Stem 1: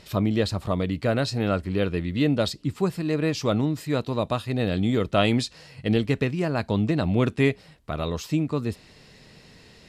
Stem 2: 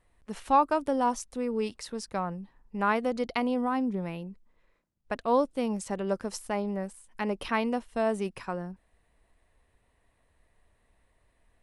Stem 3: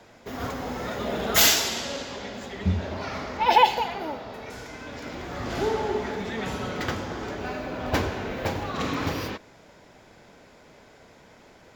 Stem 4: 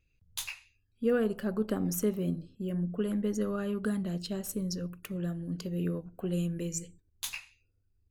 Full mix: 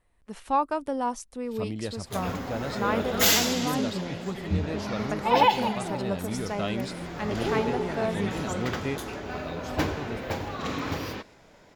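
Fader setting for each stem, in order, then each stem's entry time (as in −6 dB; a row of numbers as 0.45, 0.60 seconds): −10.5, −2.0, −3.0, −6.0 decibels; 1.45, 0.00, 1.85, 1.75 seconds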